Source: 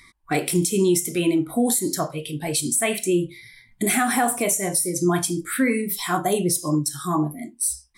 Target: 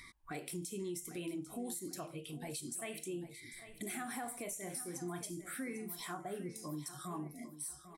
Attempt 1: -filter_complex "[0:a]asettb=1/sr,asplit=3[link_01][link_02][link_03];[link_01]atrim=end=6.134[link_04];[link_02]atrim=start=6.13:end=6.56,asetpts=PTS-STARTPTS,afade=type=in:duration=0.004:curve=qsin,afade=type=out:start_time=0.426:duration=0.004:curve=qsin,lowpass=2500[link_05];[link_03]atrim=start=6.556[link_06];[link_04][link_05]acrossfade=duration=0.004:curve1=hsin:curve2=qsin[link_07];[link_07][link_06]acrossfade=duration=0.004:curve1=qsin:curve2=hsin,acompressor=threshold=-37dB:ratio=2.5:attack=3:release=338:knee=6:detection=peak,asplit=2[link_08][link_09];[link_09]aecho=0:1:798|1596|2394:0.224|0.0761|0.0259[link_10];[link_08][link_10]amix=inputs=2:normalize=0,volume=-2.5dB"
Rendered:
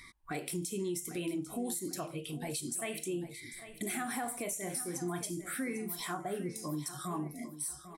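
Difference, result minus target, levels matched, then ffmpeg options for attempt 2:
downward compressor: peak gain reduction −5.5 dB
-filter_complex "[0:a]asettb=1/sr,asplit=3[link_01][link_02][link_03];[link_01]atrim=end=6.134[link_04];[link_02]atrim=start=6.13:end=6.56,asetpts=PTS-STARTPTS,afade=type=in:duration=0.004:curve=qsin,afade=type=out:start_time=0.426:duration=0.004:curve=qsin,lowpass=2500[link_05];[link_03]atrim=start=6.556[link_06];[link_04][link_05]acrossfade=duration=0.004:curve1=hsin:curve2=qsin[link_07];[link_07][link_06]acrossfade=duration=0.004:curve1=qsin:curve2=hsin,acompressor=threshold=-46dB:ratio=2.5:attack=3:release=338:knee=6:detection=peak,asplit=2[link_08][link_09];[link_09]aecho=0:1:798|1596|2394:0.224|0.0761|0.0259[link_10];[link_08][link_10]amix=inputs=2:normalize=0,volume=-2.5dB"

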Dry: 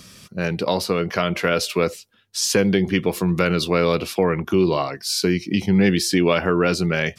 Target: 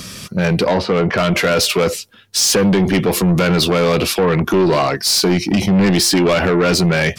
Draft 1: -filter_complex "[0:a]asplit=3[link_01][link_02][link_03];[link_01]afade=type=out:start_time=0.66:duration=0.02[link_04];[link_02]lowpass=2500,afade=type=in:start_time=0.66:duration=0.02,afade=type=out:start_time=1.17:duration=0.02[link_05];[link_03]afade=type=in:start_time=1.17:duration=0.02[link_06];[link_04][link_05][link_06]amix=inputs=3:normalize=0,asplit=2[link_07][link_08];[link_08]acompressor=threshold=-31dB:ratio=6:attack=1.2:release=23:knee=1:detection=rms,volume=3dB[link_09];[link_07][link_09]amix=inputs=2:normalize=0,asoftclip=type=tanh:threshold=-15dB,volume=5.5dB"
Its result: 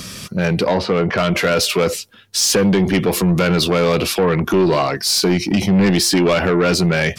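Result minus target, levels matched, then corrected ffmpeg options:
downward compressor: peak gain reduction +7.5 dB
-filter_complex "[0:a]asplit=3[link_01][link_02][link_03];[link_01]afade=type=out:start_time=0.66:duration=0.02[link_04];[link_02]lowpass=2500,afade=type=in:start_time=0.66:duration=0.02,afade=type=out:start_time=1.17:duration=0.02[link_05];[link_03]afade=type=in:start_time=1.17:duration=0.02[link_06];[link_04][link_05][link_06]amix=inputs=3:normalize=0,asplit=2[link_07][link_08];[link_08]acompressor=threshold=-22dB:ratio=6:attack=1.2:release=23:knee=1:detection=rms,volume=3dB[link_09];[link_07][link_09]amix=inputs=2:normalize=0,asoftclip=type=tanh:threshold=-15dB,volume=5.5dB"

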